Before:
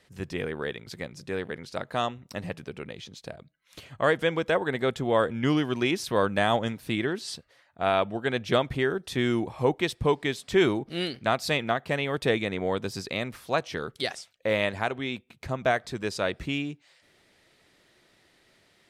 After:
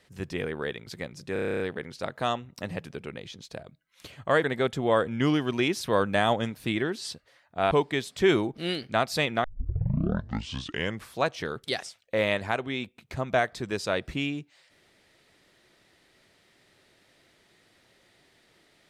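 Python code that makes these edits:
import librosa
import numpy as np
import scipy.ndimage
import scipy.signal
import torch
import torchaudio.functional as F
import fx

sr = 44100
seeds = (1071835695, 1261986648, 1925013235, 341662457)

y = fx.edit(x, sr, fx.stutter(start_s=1.33, slice_s=0.03, count=10),
    fx.cut(start_s=4.17, length_s=0.5),
    fx.cut(start_s=7.94, length_s=2.09),
    fx.tape_start(start_s=11.76, length_s=1.7), tone=tone)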